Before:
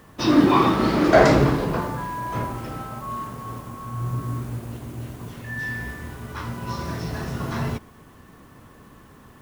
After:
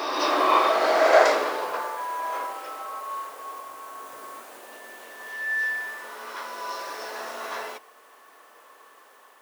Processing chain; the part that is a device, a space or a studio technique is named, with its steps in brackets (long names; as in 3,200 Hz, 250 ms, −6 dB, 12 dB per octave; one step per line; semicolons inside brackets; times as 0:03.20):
ghost voice (reversed playback; convolution reverb RT60 2.8 s, pre-delay 41 ms, DRR 1.5 dB; reversed playback; high-pass filter 500 Hz 24 dB per octave)
level −1.5 dB